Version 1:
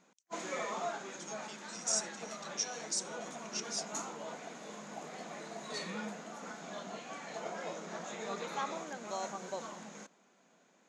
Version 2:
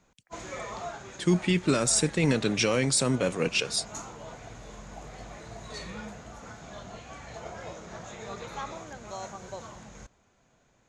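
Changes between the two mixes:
speech: remove band-pass filter 6.1 kHz, Q 6.7; first sound: remove brick-wall FIR high-pass 160 Hz

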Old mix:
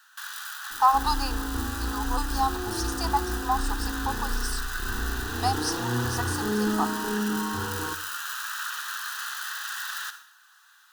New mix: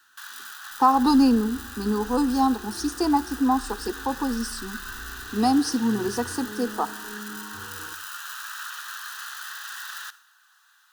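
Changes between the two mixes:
speech: remove high-pass 740 Hz 24 dB/octave; first sound: send -9.5 dB; second sound -12.0 dB

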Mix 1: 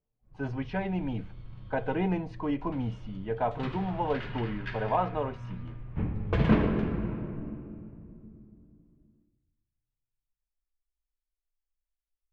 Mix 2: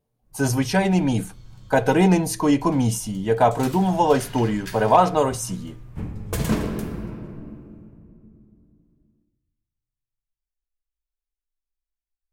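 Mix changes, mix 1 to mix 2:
speech +12.0 dB; master: remove low-pass 3 kHz 24 dB/octave

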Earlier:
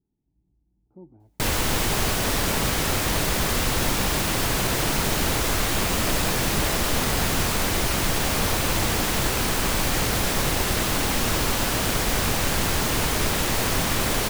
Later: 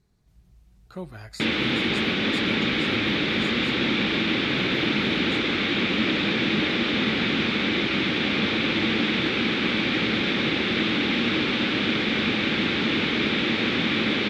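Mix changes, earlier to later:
speech: remove cascade formant filter u; background: add cabinet simulation 170–3600 Hz, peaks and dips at 220 Hz +9 dB, 320 Hz +7 dB, 680 Hz -10 dB, 990 Hz -9 dB, 2.3 kHz +7 dB, 3.6 kHz +9 dB

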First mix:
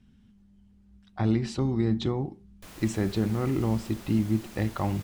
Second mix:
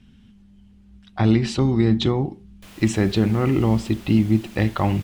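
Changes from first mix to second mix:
speech +7.5 dB; master: add peaking EQ 2.9 kHz +5.5 dB 1 oct

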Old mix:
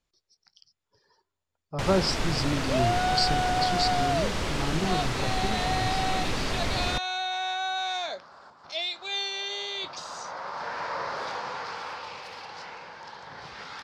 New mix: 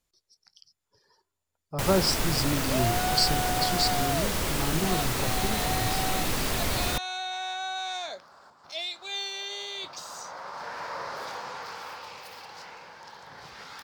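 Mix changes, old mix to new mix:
second sound -3.5 dB; master: remove low-pass 5.4 kHz 12 dB/octave

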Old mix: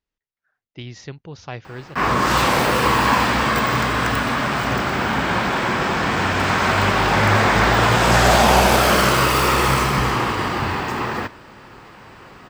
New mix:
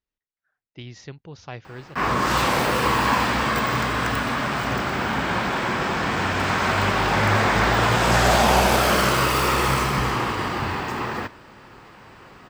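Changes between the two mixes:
speech -4.0 dB; background -3.5 dB

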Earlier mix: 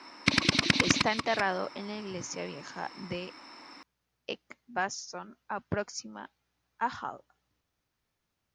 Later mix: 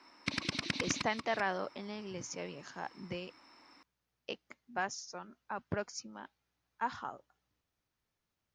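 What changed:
speech -4.5 dB; background -11.0 dB

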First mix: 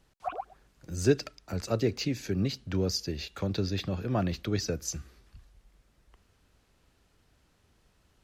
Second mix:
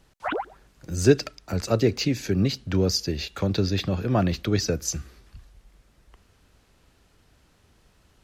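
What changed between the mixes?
speech +6.5 dB; background: remove vowel filter a

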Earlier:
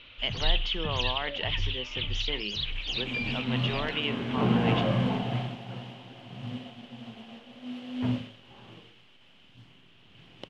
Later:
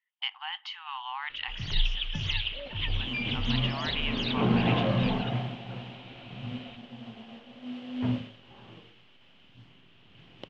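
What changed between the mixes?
speech: add brick-wall FIR high-pass 750 Hz; first sound: entry +1.30 s; master: add distance through air 75 m

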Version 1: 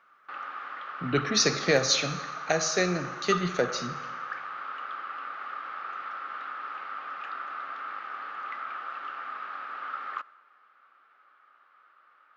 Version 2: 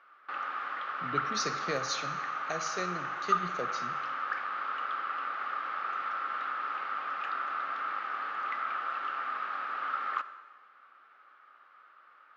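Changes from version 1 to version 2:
speech -11.0 dB; background: send +11.0 dB

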